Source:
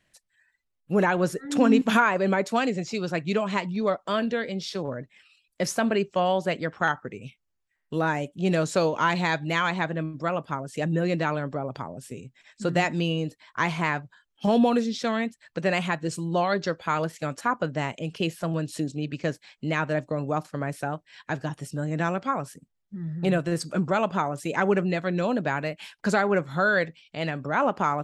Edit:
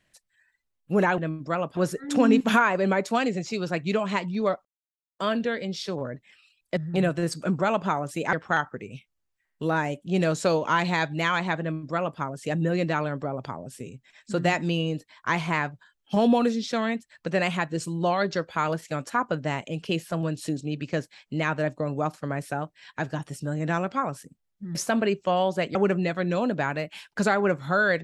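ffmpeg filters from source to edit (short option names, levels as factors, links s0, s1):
-filter_complex "[0:a]asplit=8[s0][s1][s2][s3][s4][s5][s6][s7];[s0]atrim=end=1.182[s8];[s1]atrim=start=9.918:end=10.512[s9];[s2]atrim=start=1.178:end=4.06,asetpts=PTS-STARTPTS,afade=t=out:st=2.878:d=0.004:c=hsin,apad=pad_dur=0.54[s10];[s3]atrim=start=4.06:end=5.642,asetpts=PTS-STARTPTS,afade=t=in:d=0.004:c=hsin[s11];[s4]atrim=start=23.058:end=24.622[s12];[s5]atrim=start=6.638:end=23.062[s13];[s6]atrim=start=5.638:end=6.642[s14];[s7]atrim=start=24.618[s15];[s8][s9]acrossfade=d=0.004:c1=hsin:c2=hsin[s16];[s10][s11]concat=n=2:v=0:a=1[s17];[s16][s17]acrossfade=d=0.004:c1=hsin:c2=hsin[s18];[s18][s12]acrossfade=d=0.004:c1=hsin:c2=hsin[s19];[s19][s13]acrossfade=d=0.004:c1=hsin:c2=hsin[s20];[s20][s14]acrossfade=d=0.004:c1=hsin:c2=hsin[s21];[s21][s15]acrossfade=d=0.004:c1=hsin:c2=hsin"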